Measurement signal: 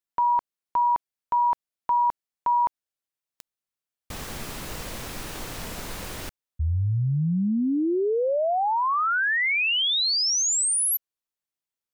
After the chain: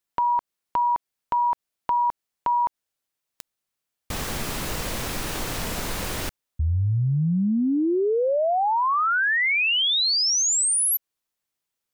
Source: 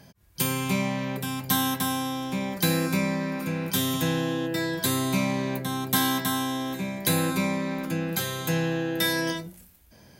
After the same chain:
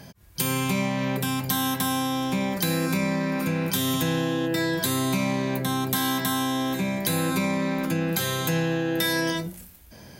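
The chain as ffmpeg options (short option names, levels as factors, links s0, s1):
-af "acompressor=threshold=0.0447:ratio=6:attack=3.8:release=136:knee=6,volume=2.24"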